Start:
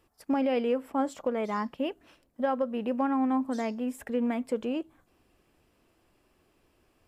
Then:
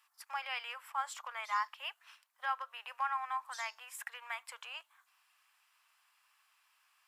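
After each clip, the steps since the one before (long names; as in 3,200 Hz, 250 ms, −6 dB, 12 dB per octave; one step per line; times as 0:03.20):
Butterworth high-pass 980 Hz 36 dB per octave
level +2 dB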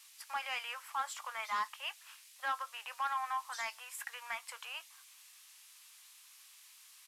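noise in a band 2,000–13,000 Hz −61 dBFS
soft clipping −28.5 dBFS, distortion −16 dB
double-tracking delay 18 ms −13 dB
level +1.5 dB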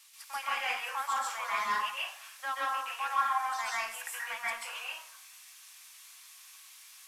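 dense smooth reverb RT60 0.57 s, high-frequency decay 0.6×, pre-delay 120 ms, DRR −6 dB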